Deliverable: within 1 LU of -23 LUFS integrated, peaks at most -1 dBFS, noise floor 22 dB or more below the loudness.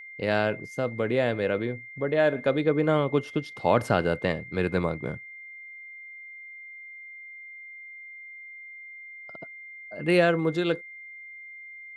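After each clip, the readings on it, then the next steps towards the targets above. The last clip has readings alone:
steady tone 2.1 kHz; tone level -41 dBFS; loudness -26.0 LUFS; peak level -7.5 dBFS; loudness target -23.0 LUFS
-> band-stop 2.1 kHz, Q 30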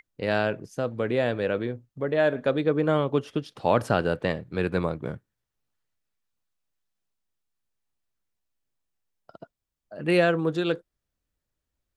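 steady tone not found; loudness -26.0 LUFS; peak level -7.5 dBFS; loudness target -23.0 LUFS
-> trim +3 dB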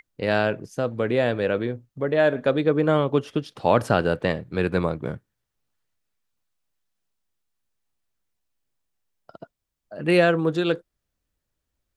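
loudness -23.0 LUFS; peak level -4.5 dBFS; noise floor -82 dBFS

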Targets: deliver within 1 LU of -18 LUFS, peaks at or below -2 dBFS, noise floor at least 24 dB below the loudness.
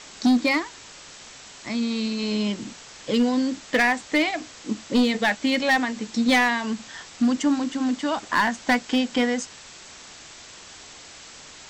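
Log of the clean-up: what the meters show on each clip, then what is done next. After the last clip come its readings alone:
clipped samples 1.2%; clipping level -14.5 dBFS; noise floor -45 dBFS; noise floor target -48 dBFS; loudness -23.5 LUFS; peak level -14.5 dBFS; loudness target -18.0 LUFS
-> clip repair -14.5 dBFS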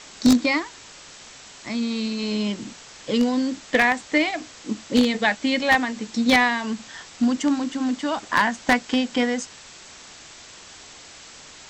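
clipped samples 0.0%; noise floor -45 dBFS; noise floor target -47 dBFS
-> noise reduction 6 dB, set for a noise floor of -45 dBFS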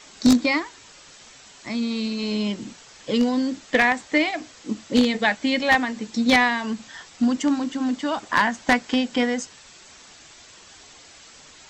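noise floor -48 dBFS; loudness -22.5 LUFS; peak level -5.5 dBFS; loudness target -18.0 LUFS
-> trim +4.5 dB; peak limiter -2 dBFS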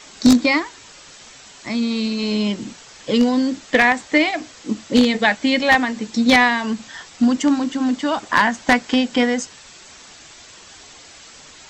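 loudness -18.0 LUFS; peak level -2.0 dBFS; noise floor -44 dBFS

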